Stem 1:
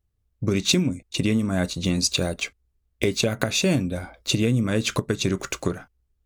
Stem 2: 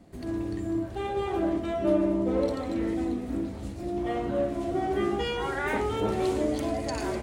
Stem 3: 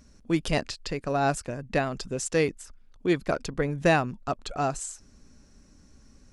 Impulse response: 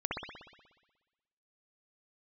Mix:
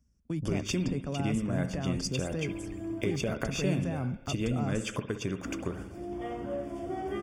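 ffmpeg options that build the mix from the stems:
-filter_complex "[0:a]highshelf=f=6000:g=-8,volume=0.282,asplit=2[s0][s1];[s1]volume=0.237[s2];[1:a]adelay=2150,volume=0.447,asplit=3[s3][s4][s5];[s3]atrim=end=3.16,asetpts=PTS-STARTPTS,afade=t=out:st=3.156:d=0.004:c=hsin[s6];[s4]atrim=start=3.16:end=5.45,asetpts=PTS-STARTPTS,volume=0[s7];[s5]atrim=start=5.45,asetpts=PTS-STARTPTS,afade=t=in:d=0.004:c=hsin[s8];[s6][s7][s8]concat=n=3:v=0:a=1[s9];[2:a]agate=range=0.0708:threshold=0.00631:ratio=16:detection=peak,bass=f=250:g=15,treble=f=4000:g=7,acrossover=split=220|1600[s10][s11][s12];[s10]acompressor=threshold=0.0355:ratio=4[s13];[s11]acompressor=threshold=0.0501:ratio=4[s14];[s12]acompressor=threshold=0.00447:ratio=4[s15];[s13][s14][s15]amix=inputs=3:normalize=0,volume=0.75[s16];[s9][s16]amix=inputs=2:normalize=0,highpass=42,alimiter=level_in=1.19:limit=0.0631:level=0:latency=1:release=26,volume=0.841,volume=1[s17];[3:a]atrim=start_sample=2205[s18];[s2][s18]afir=irnorm=-1:irlink=0[s19];[s0][s17][s19]amix=inputs=3:normalize=0,asuperstop=centerf=4000:order=8:qfactor=4.7"

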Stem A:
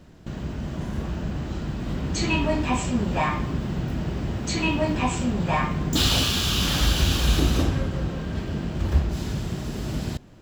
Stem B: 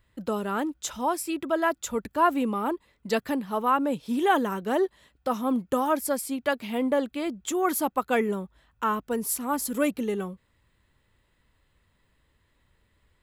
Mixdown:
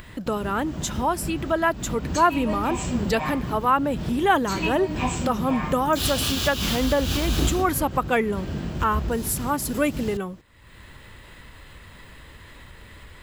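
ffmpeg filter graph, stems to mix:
-filter_complex "[0:a]highshelf=f=12000:g=9,volume=0.891[s0];[1:a]equalizer=f=2000:t=o:w=2.2:g=3,acompressor=mode=upward:threshold=0.0398:ratio=2.5,volume=1.19,asplit=2[s1][s2];[s2]apad=whole_len=459187[s3];[s0][s3]sidechaincompress=threshold=0.0398:ratio=8:attack=36:release=188[s4];[s4][s1]amix=inputs=2:normalize=0"

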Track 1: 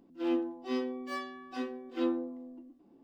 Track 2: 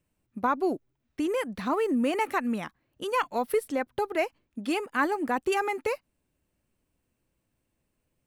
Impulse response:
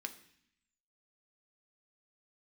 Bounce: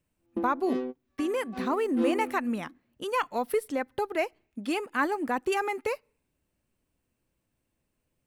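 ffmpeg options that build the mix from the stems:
-filter_complex "[0:a]equalizer=f=410:t=o:w=1.9:g=3.5,adynamicsmooth=sensitivity=7.5:basefreq=890,volume=0.891[s0];[1:a]volume=0.841,asplit=3[s1][s2][s3];[s2]volume=0.0794[s4];[s3]apad=whole_len=133867[s5];[s0][s5]sidechaingate=range=0.00631:threshold=0.00282:ratio=16:detection=peak[s6];[2:a]atrim=start_sample=2205[s7];[s4][s7]afir=irnorm=-1:irlink=0[s8];[s6][s1][s8]amix=inputs=3:normalize=0"

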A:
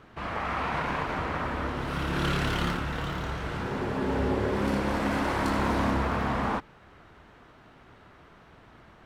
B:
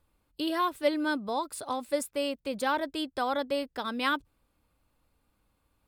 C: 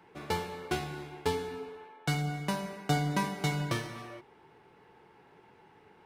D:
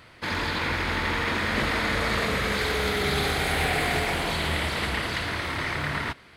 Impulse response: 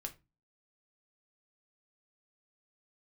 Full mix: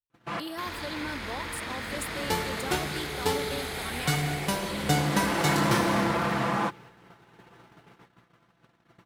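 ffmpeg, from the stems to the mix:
-filter_complex "[0:a]aecho=1:1:5.9:0.74,aeval=exprs='val(0)+0.00251*(sin(2*PI*60*n/s)+sin(2*PI*2*60*n/s)/2+sin(2*PI*3*60*n/s)/3+sin(2*PI*4*60*n/s)/4+sin(2*PI*5*60*n/s)/5)':c=same,highpass=f=100:w=0.5412,highpass=f=100:w=1.3066,adelay=100,volume=0.944[s0];[1:a]alimiter=limit=0.075:level=0:latency=1,volume=0.473,asplit=2[s1][s2];[2:a]adelay=2000,volume=1.33[s3];[3:a]adelay=350,volume=0.282[s4];[s2]apad=whole_len=404211[s5];[s0][s5]sidechaincompress=threshold=0.002:ratio=10:attack=27:release=967[s6];[s6][s1][s3][s4]amix=inputs=4:normalize=0,agate=range=0.0355:threshold=0.00355:ratio=16:detection=peak,highshelf=f=5300:g=9"

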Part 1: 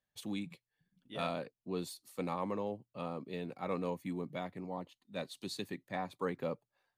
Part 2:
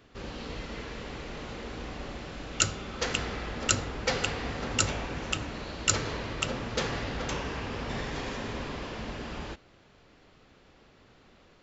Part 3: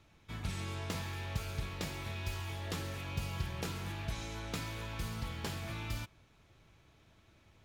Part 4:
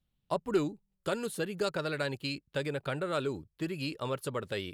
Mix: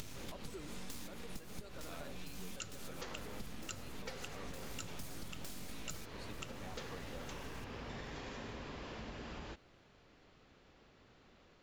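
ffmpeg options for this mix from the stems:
-filter_complex "[0:a]adelay=700,volume=0.447[s0];[1:a]volume=0.501[s1];[2:a]bass=f=250:g=8,treble=f=4000:g=15,acompressor=mode=upward:threshold=0.0224:ratio=2.5,aeval=exprs='abs(val(0))':c=same,volume=1.19,asplit=2[s2][s3];[s3]volume=0.0794[s4];[3:a]volume=0.251,asplit=2[s5][s6];[s6]apad=whole_len=337060[s7];[s2][s7]sidechaincompress=threshold=0.00224:ratio=8:attack=16:release=151[s8];[s4]aecho=0:1:431|862|1293|1724|2155|2586|3017|3448|3879:1|0.57|0.325|0.185|0.106|0.0602|0.0343|0.0195|0.0111[s9];[s0][s1][s8][s5][s9]amix=inputs=5:normalize=0,acompressor=threshold=0.00708:ratio=5"

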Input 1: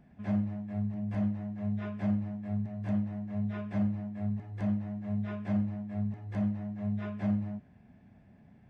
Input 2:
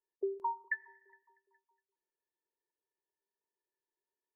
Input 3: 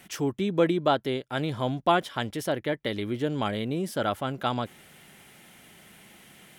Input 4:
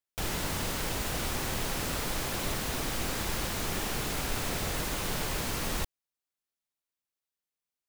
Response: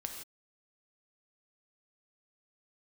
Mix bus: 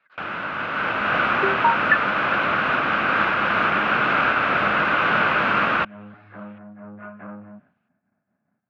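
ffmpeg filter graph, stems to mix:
-filter_complex "[0:a]lowpass=1800,agate=range=0.0224:threshold=0.00447:ratio=3:detection=peak,asoftclip=type=tanh:threshold=0.0211,volume=0.299[s0];[1:a]adelay=1200,volume=1.33[s1];[2:a]acompressor=threshold=0.02:ratio=6,aeval=exprs='val(0)*sin(2*PI*1100*n/s+1100*0.85/1.6*sin(2*PI*1.6*n/s))':c=same,volume=0.178[s2];[3:a]alimiter=limit=0.0668:level=0:latency=1:release=441,volume=1.19[s3];[s0][s1][s2][s3]amix=inputs=4:normalize=0,equalizer=f=1500:t=o:w=0.6:g=14.5,dynaudnorm=f=570:g=3:m=3.55,highpass=190,equalizer=f=410:t=q:w=4:g=-4,equalizer=f=610:t=q:w=4:g=4,equalizer=f=1200:t=q:w=4:g=6,equalizer=f=1800:t=q:w=4:g=-5,equalizer=f=2600:t=q:w=4:g=6,lowpass=f=2800:w=0.5412,lowpass=f=2800:w=1.3066"

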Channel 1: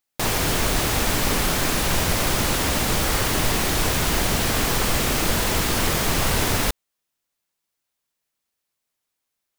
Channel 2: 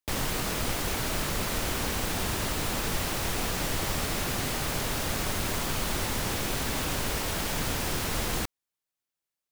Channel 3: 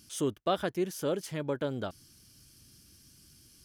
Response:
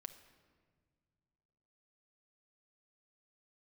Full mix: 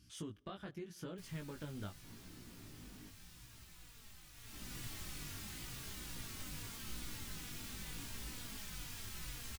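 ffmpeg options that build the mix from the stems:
-filter_complex "[0:a]bandpass=f=280:t=q:w=1.7:csg=0,adelay=1850,volume=0.158,asplit=3[s0][s1][s2];[s0]atrim=end=3.09,asetpts=PTS-STARTPTS,afade=t=out:st=3.086:d=0.004:c=hsin[s3];[s1]atrim=start=3.09:end=4.53,asetpts=PTS-STARTPTS,volume=0[s4];[s2]atrim=start=4.53,asetpts=PTS-STARTPTS,afade=t=in:d=0.004:c=hsin[s5];[s3][s4][s5]concat=n=3:v=0:a=1[s6];[1:a]asplit=2[s7][s8];[s8]adelay=3.6,afreqshift=-2.2[s9];[s7][s9]amix=inputs=2:normalize=1,adelay=1100,volume=0.266,afade=t=in:st=4.33:d=0.46:silence=0.281838,asplit=2[s10][s11];[s11]volume=0.596[s12];[2:a]acompressor=threshold=0.02:ratio=10,lowpass=f=1500:p=1,volume=1.41,asplit=2[s13][s14];[s14]volume=0.299[s15];[3:a]atrim=start_sample=2205[s16];[s12][s15]amix=inputs=2:normalize=0[s17];[s17][s16]afir=irnorm=-1:irlink=0[s18];[s6][s10][s13][s18]amix=inputs=4:normalize=0,equalizer=f=540:t=o:w=2.2:g=-14.5,flanger=delay=16.5:depth=3.6:speed=0.85"

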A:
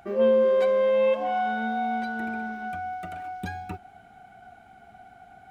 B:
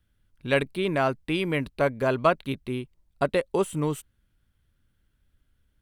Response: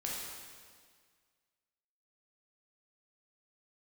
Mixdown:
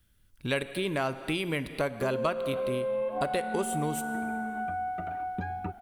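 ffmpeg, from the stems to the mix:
-filter_complex "[0:a]lowpass=1400,acompressor=threshold=0.0562:ratio=6,adelay=1950,volume=1.26[s0];[1:a]volume=1.12,asplit=2[s1][s2];[s2]volume=0.2[s3];[2:a]atrim=start_sample=2205[s4];[s3][s4]afir=irnorm=-1:irlink=0[s5];[s0][s1][s5]amix=inputs=3:normalize=0,highshelf=f=4200:g=10,acompressor=threshold=0.0316:ratio=2.5"

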